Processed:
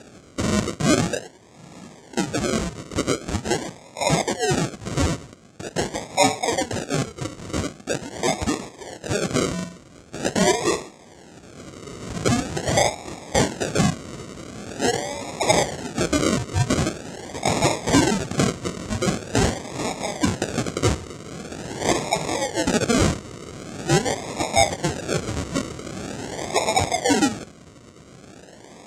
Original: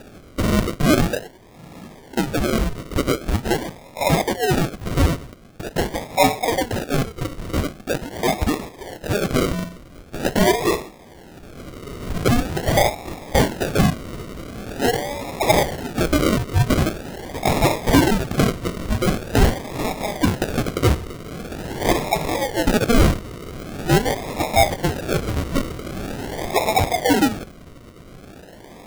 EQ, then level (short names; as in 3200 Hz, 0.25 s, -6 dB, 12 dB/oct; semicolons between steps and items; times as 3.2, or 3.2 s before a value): HPF 86 Hz 12 dB/oct; synth low-pass 7400 Hz, resonance Q 2.8; -2.5 dB